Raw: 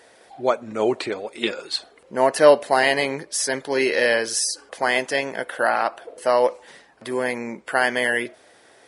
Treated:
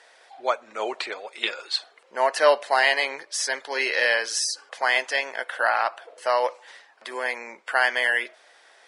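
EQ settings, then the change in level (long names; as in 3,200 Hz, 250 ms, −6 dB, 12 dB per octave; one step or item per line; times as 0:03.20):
high-pass filter 790 Hz 12 dB per octave
high-frequency loss of the air 86 metres
high-shelf EQ 6,000 Hz +6 dB
+1.0 dB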